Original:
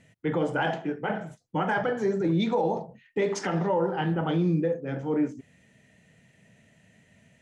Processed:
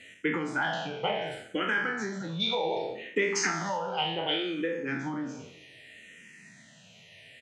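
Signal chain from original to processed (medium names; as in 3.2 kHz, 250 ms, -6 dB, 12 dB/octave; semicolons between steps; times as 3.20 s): spectral sustain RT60 0.66 s; 3.52–4.78 s: bass shelf 320 Hz -8.5 dB; compression, threshold -28 dBFS, peak gain reduction 9 dB; delay 302 ms -23 dB; gain riding 0.5 s; frequency weighting D; low-pass that closes with the level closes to 1.8 kHz, closed at -17.5 dBFS; barber-pole phaser -0.67 Hz; trim +3.5 dB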